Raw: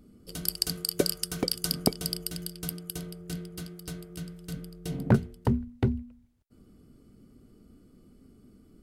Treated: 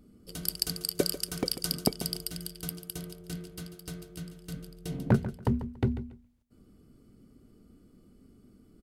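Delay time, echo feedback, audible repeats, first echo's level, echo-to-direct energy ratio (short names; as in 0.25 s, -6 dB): 0.142 s, 21%, 2, -13.0 dB, -13.0 dB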